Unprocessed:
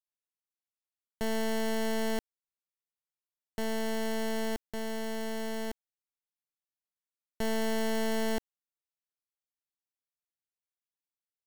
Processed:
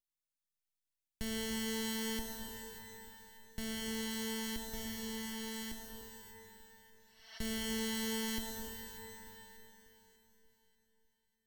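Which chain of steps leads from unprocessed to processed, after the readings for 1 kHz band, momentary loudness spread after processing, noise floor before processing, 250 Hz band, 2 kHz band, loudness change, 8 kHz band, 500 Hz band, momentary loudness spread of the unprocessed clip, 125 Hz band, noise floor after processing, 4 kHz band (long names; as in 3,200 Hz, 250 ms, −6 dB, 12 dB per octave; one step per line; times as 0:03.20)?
−9.5 dB, 18 LU, below −85 dBFS, −5.0 dB, −5.0 dB, −6.0 dB, +2.0 dB, −11.5 dB, 7 LU, −3.0 dB, below −85 dBFS, +0.5 dB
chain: healed spectral selection 0:06.68–0:07.36, 630–6,300 Hz both
guitar amp tone stack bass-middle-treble 6-0-2
delay that swaps between a low-pass and a high-pass 296 ms, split 1,100 Hz, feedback 62%, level −11 dB
reverb with rising layers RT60 1.7 s, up +12 semitones, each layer −2 dB, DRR 3 dB
level +12.5 dB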